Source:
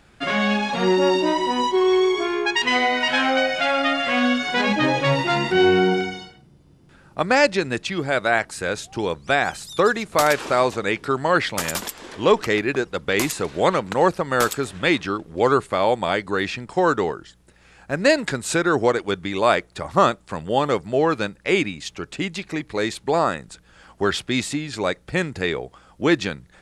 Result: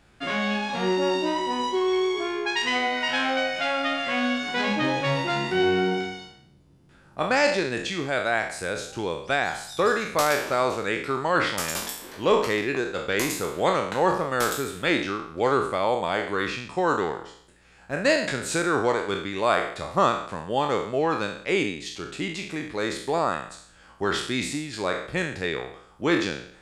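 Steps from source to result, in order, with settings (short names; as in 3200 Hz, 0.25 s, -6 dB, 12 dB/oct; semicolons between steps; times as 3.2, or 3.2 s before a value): spectral trails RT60 0.62 s; gain -6 dB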